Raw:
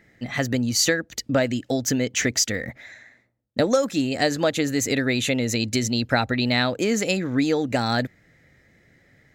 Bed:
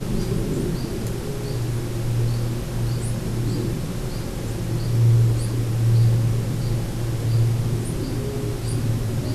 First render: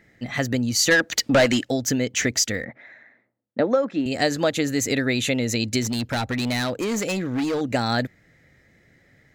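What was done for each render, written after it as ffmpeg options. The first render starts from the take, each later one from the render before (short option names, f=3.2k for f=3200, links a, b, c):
-filter_complex "[0:a]asplit=3[a][b][c];[a]afade=t=out:st=0.9:d=0.02[d];[b]asplit=2[e][f];[f]highpass=f=720:p=1,volume=21dB,asoftclip=type=tanh:threshold=-8.5dB[g];[e][g]amix=inputs=2:normalize=0,lowpass=f=6.5k:p=1,volume=-6dB,afade=t=in:st=0.9:d=0.02,afade=t=out:st=1.63:d=0.02[h];[c]afade=t=in:st=1.63:d=0.02[i];[d][h][i]amix=inputs=3:normalize=0,asettb=1/sr,asplit=3[j][k][l];[j]atrim=end=2.654[m];[k]atrim=start=2.65:end=4.06,asetpts=PTS-STARTPTS,afade=t=in:d=0.004:c=qsin,afade=t=out:st=1.406:d=0.004:c=qsin,highpass=190,lowpass=2k[n];[l]atrim=start=4.056[o];[m][n]acrossfade=d=0.004:c1=hsin:c2=qsin[p];[p][o]acrossfade=d=0.004:c1=qsin:c2=hsin,asettb=1/sr,asplit=3[q][r][s];[q]atrim=end=5.824[t];[r]atrim=start=5.82:end=7.61,asetpts=PTS-STARTPTS,afade=t=in:d=0.004:c=qsin,afade=t=out:st=1.786:d=0.004:c=qsin,asoftclip=type=hard:threshold=-21dB[u];[s]atrim=start=7.606[v];[t][u]acrossfade=d=0.004:c1=hsin:c2=qsin[w];[w][v]acrossfade=d=0.004:c1=qsin:c2=hsin"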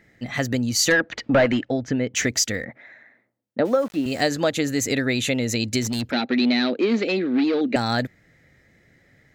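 -filter_complex "[0:a]asplit=3[a][b][c];[a]afade=t=out:st=0.91:d=0.02[d];[b]lowpass=2.3k,afade=t=in:st=0.91:d=0.02,afade=t=out:st=2.13:d=0.02[e];[c]afade=t=in:st=2.13:d=0.02[f];[d][e][f]amix=inputs=3:normalize=0,asettb=1/sr,asplit=3[g][h][i];[g]atrim=end=3.654[j];[h]atrim=start=3.65:end=4.28,asetpts=PTS-STARTPTS,afade=t=in:d=0.004:c=qsin,afade=t=out:st=0.626:d=0.004:c=qsin,aeval=exprs='val(0)*gte(abs(val(0)),0.0133)':c=same[k];[i]atrim=start=4.276[l];[j][k]acrossfade=d=0.004:c1=hsin:c2=qsin[m];[m][l]acrossfade=d=0.004:c1=qsin:c2=hsin,asettb=1/sr,asplit=3[n][o][p];[n]atrim=end=6.114[q];[o]atrim=start=6.11:end=7.76,asetpts=PTS-STARTPTS,afade=t=in:d=0.004:c=qsin,afade=t=out:st=1.646:d=0.004:c=qsin,highpass=f=210:w=0.5412,highpass=f=210:w=1.3066,equalizer=f=240:t=q:w=4:g=8,equalizer=f=370:t=q:w=4:g=8,equalizer=f=1k:t=q:w=4:g=-6,equalizer=f=2.4k:t=q:w=4:g=4,equalizer=f=4.1k:t=q:w=4:g=7,lowpass=f=4.2k:w=0.5412,lowpass=f=4.2k:w=1.3066[r];[p]atrim=start=7.756[s];[q][r]acrossfade=d=0.004:c1=hsin:c2=qsin[t];[t][s]acrossfade=d=0.004:c1=qsin:c2=hsin"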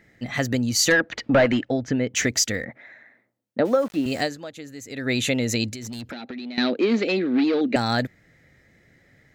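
-filter_complex "[0:a]asettb=1/sr,asplit=3[a][b][c];[a]atrim=end=5.704[d];[b]atrim=start=5.7:end=6.58,asetpts=PTS-STARTPTS,afade=t=in:d=0.004:c=qsin,afade=t=out:st=0.876:d=0.004:c=qsin,acompressor=threshold=-31dB:ratio=12:attack=3.2:release=140:knee=1:detection=peak[e];[c]atrim=start=6.576[f];[d][e]acrossfade=d=0.004:c1=hsin:c2=qsin[g];[g][f]acrossfade=d=0.004:c1=qsin:c2=hsin,asplit=3[h][i][j];[h]atrim=end=4.44,asetpts=PTS-STARTPTS,afade=t=out:st=4.18:d=0.26:c=qua:silence=0.16788[k];[i]atrim=start=4.44:end=4.86,asetpts=PTS-STARTPTS,volume=-15.5dB[l];[j]atrim=start=4.86,asetpts=PTS-STARTPTS,afade=t=in:d=0.26:c=qua:silence=0.16788[m];[k][l][m]concat=n=3:v=0:a=1"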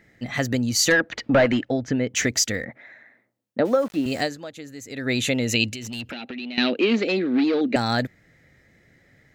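-filter_complex "[0:a]asettb=1/sr,asplit=3[a][b][c];[a]atrim=end=5.474[d];[b]atrim=start=5.47:end=6.96,asetpts=PTS-STARTPTS,afade=t=in:d=0.004:c=qsin,afade=t=out:st=1.486:d=0.004:c=qsin,equalizer=f=2.8k:w=4.4:g=14.5[e];[c]atrim=start=6.956[f];[d][e]acrossfade=d=0.004:c1=hsin:c2=qsin[g];[g][f]acrossfade=d=0.004:c1=qsin:c2=hsin"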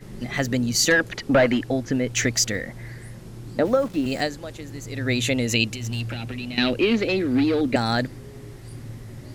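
-filter_complex "[1:a]volume=-14.5dB[a];[0:a][a]amix=inputs=2:normalize=0"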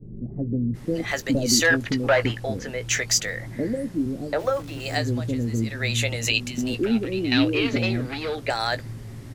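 -filter_complex "[0:a]asplit=2[a][b];[b]adelay=18,volume=-12dB[c];[a][c]amix=inputs=2:normalize=0,acrossover=split=440[d][e];[e]adelay=740[f];[d][f]amix=inputs=2:normalize=0"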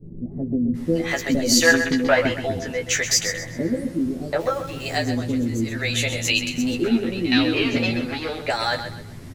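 -filter_complex "[0:a]asplit=2[a][b];[b]adelay=12,volume=-2.5dB[c];[a][c]amix=inputs=2:normalize=0,aecho=1:1:129|258|387|516:0.335|0.111|0.0365|0.012"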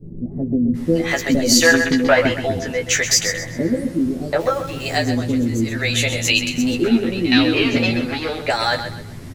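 -af "volume=4dB,alimiter=limit=-2dB:level=0:latency=1"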